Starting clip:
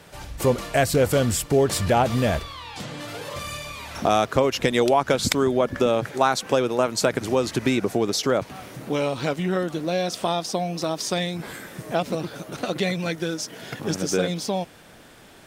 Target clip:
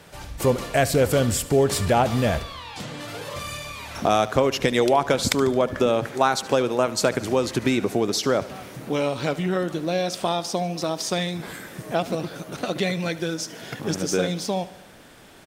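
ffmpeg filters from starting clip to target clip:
-af "aecho=1:1:73|146|219|292|365:0.133|0.0773|0.0449|0.026|0.0151"

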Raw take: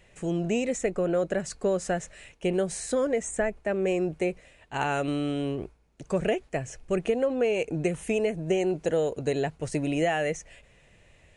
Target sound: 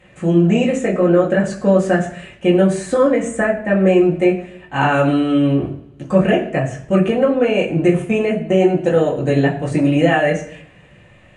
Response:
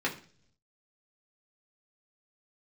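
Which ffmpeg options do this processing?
-filter_complex "[0:a]asettb=1/sr,asplit=3[s0][s1][s2];[s0]atrim=end=8.024[s3];[s1]atrim=start=8.02:end=8.82,asetpts=PTS-STARTPTS,afade=t=in:d=0.004:c=qsin,afade=t=out:st=0.796:d=0.004:c=qsin,agate=range=0.251:threshold=0.0316:ratio=16:detection=peak[s4];[s2]atrim=start=8.816[s5];[s3][s4]acrossfade=d=0.004:c1=hsin:c2=qsin[s6];[s6][s5]acrossfade=d=0.004:c1=qsin:c2=hsin[s7];[1:a]atrim=start_sample=2205,asetrate=29988,aresample=44100[s8];[s7][s8]afir=irnorm=-1:irlink=0,volume=1.19"

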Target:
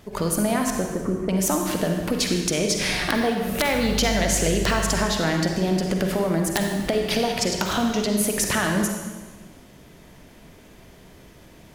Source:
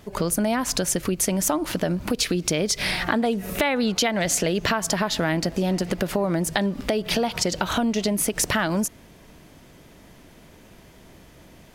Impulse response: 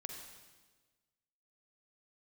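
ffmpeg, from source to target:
-filter_complex "[0:a]asettb=1/sr,asplit=3[s0][s1][s2];[s0]atrim=end=0.704[s3];[s1]atrim=start=0.7:end=1.29,asetpts=PTS-STARTPTS,afade=t=in:d=0.004:c=qsin,afade=t=out:st=0.586:d=0.004:c=qsin,lowpass=f=1400:w=0.5412,lowpass=f=1400:w=1.3066[s4];[s2]atrim=start=1.286[s5];[s3][s4]acrossfade=d=0.004:c1=hsin:c2=qsin[s6];[s6][s5]acrossfade=d=0.004:c1=qsin:c2=hsin,asettb=1/sr,asplit=3[s7][s8][s9];[s7]atrim=end=3.734[s10];[s8]atrim=start=3.73:end=5.05,asetpts=PTS-STARTPTS,afade=t=in:d=0.004:c=qsin,afade=t=out:st=1.316:d=0.004:c=qsin,aeval=exprs='val(0)+0.0282*(sin(2*PI*50*n/s)+sin(2*PI*2*50*n/s)/2+sin(2*PI*3*50*n/s)/3+sin(2*PI*4*50*n/s)/4+sin(2*PI*5*50*n/s)/5)':c=same[s11];[s9]atrim=start=5.046[s12];[s10][s11]acrossfade=d=0.004:c1=hsin:c2=qsin[s13];[s13][s12]acrossfade=d=0.004:c1=qsin:c2=hsin,aeval=exprs='(mod(2.66*val(0)+1,2)-1)/2.66':c=same[s14];[1:a]atrim=start_sample=2205[s15];[s14][s15]afir=irnorm=-1:irlink=0,volume=1.5"

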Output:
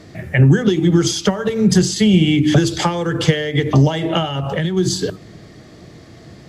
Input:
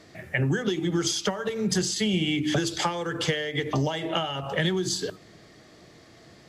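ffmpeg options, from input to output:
-filter_complex "[0:a]equalizer=f=130:w=0.31:g=5,asplit=3[s0][s1][s2];[s0]afade=t=out:st=4.28:d=0.02[s3];[s1]acompressor=threshold=0.0562:ratio=10,afade=t=in:st=4.28:d=0.02,afade=t=out:st=4.76:d=0.02[s4];[s2]afade=t=in:st=4.76:d=0.02[s5];[s3][s4][s5]amix=inputs=3:normalize=0,lowshelf=f=190:g=6.5,volume=2"

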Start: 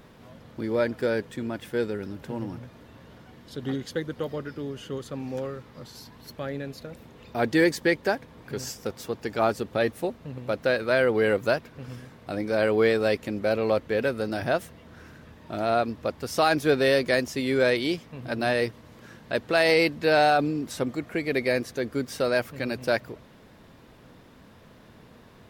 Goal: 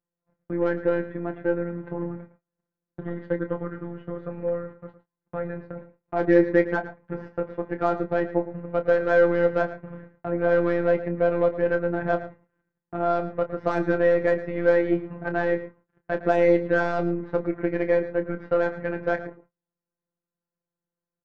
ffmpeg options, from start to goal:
-filter_complex "[0:a]atempo=1.2,lowpass=f=1700:w=0.5412,lowpass=f=1700:w=1.3066,asplit=2[s0][s1];[s1]alimiter=limit=0.141:level=0:latency=1:release=49,volume=1[s2];[s0][s2]amix=inputs=2:normalize=0,aeval=exprs='0.473*(cos(1*acos(clip(val(0)/0.473,-1,1)))-cos(1*PI/2))+0.0106*(cos(8*acos(clip(val(0)/0.473,-1,1)))-cos(8*PI/2))':c=same,afftfilt=real='hypot(re,im)*cos(PI*b)':imag='0':win_size=1024:overlap=0.75,agate=range=0.00794:threshold=0.01:ratio=16:detection=peak,asplit=2[s3][s4];[s4]adelay=27,volume=0.335[s5];[s3][s5]amix=inputs=2:normalize=0,asplit=2[s6][s7];[s7]adelay=110.8,volume=0.2,highshelf=f=4000:g=-2.49[s8];[s6][s8]amix=inputs=2:normalize=0"

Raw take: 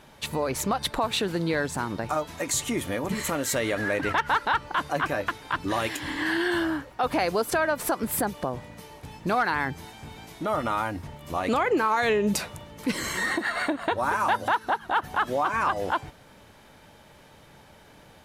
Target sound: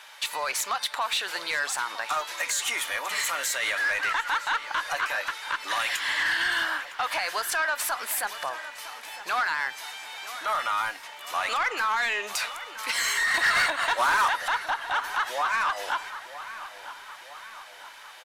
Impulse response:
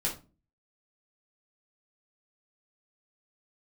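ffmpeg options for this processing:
-filter_complex "[0:a]highpass=1200,alimiter=limit=0.0668:level=0:latency=1:release=91,asettb=1/sr,asplit=3[s0][s1][s2];[s0]atrim=end=13.344[s3];[s1]atrim=start=13.34:end=14.28,asetpts=PTS-STARTPTS,afade=t=in:d=0.004:c=qsin,afade=t=out:st=0.936:d=0.004:c=qsin,acontrast=75[s4];[s2]atrim=start=14.276[s5];[s3][s4]acrossfade=d=0.004:c1=hsin:c2=qsin[s6];[s6][s5]acrossfade=d=0.004:c1=qsin:c2=hsin,asplit=2[s7][s8];[s8]highpass=f=720:p=1,volume=5.62,asoftclip=type=tanh:threshold=0.15[s9];[s7][s9]amix=inputs=2:normalize=0,lowpass=f=8000:p=1,volume=0.501,asplit=2[s10][s11];[s11]adelay=959,lowpass=f=3800:p=1,volume=0.211,asplit=2[s12][s13];[s13]adelay=959,lowpass=f=3800:p=1,volume=0.55,asplit=2[s14][s15];[s15]adelay=959,lowpass=f=3800:p=1,volume=0.55,asplit=2[s16][s17];[s17]adelay=959,lowpass=f=3800:p=1,volume=0.55,asplit=2[s18][s19];[s19]adelay=959,lowpass=f=3800:p=1,volume=0.55,asplit=2[s20][s21];[s21]adelay=959,lowpass=f=3800:p=1,volume=0.55[s22];[s10][s12][s14][s16][s18][s20][s22]amix=inputs=7:normalize=0,asplit=2[s23][s24];[1:a]atrim=start_sample=2205[s25];[s24][s25]afir=irnorm=-1:irlink=0,volume=0.0708[s26];[s23][s26]amix=inputs=2:normalize=0"

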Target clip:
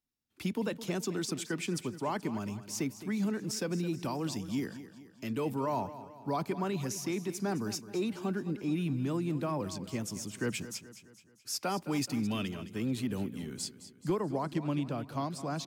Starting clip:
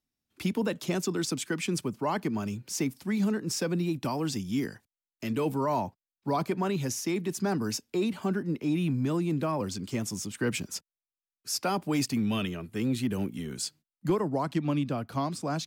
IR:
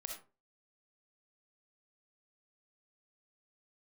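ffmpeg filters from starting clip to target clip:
-af "aecho=1:1:214|428|642|856|1070:0.2|0.0978|0.0479|0.0235|0.0115,volume=0.596"

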